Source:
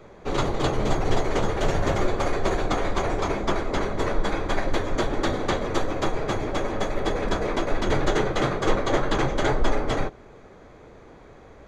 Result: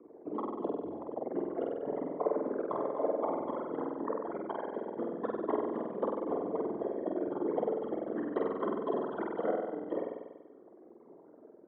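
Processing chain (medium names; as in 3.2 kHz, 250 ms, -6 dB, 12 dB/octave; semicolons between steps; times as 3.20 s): resonances exaggerated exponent 3; reverb removal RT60 1.1 s; compression, threshold -24 dBFS, peak gain reduction 9 dB; flutter echo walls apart 8.2 m, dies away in 1.2 s; mistuned SSB -120 Hz 500–3300 Hz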